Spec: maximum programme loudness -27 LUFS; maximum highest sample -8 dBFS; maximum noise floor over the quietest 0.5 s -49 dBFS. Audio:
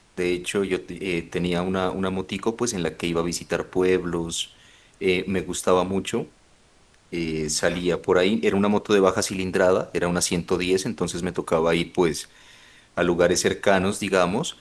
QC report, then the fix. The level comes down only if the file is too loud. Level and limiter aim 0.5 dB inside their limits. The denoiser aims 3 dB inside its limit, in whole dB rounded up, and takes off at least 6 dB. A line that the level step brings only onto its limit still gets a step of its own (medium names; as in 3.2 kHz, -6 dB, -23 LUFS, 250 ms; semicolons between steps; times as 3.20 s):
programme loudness -23.5 LUFS: fail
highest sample -4.0 dBFS: fail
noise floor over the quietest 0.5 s -57 dBFS: pass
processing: trim -4 dB; peak limiter -8.5 dBFS